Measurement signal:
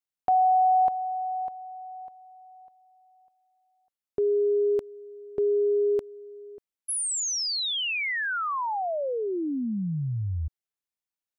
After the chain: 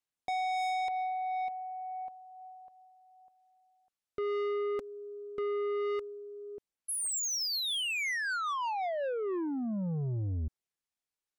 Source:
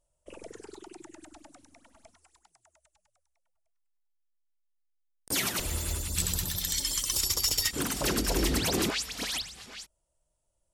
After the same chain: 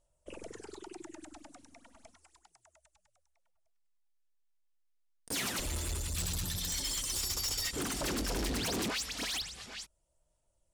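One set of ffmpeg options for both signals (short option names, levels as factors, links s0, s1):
-af "lowpass=11000,aphaser=in_gain=1:out_gain=1:delay=4.3:decay=0.21:speed=0.29:type=sinusoidal,asoftclip=type=tanh:threshold=0.0282"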